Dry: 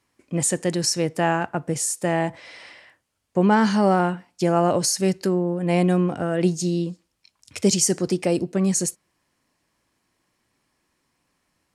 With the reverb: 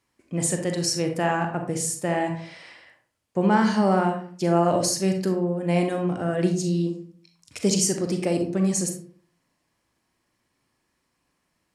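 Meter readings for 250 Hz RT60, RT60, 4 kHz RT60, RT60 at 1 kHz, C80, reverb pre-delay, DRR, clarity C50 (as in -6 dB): 0.60 s, 0.50 s, 0.30 s, 0.45 s, 11.0 dB, 33 ms, 4.5 dB, 7.0 dB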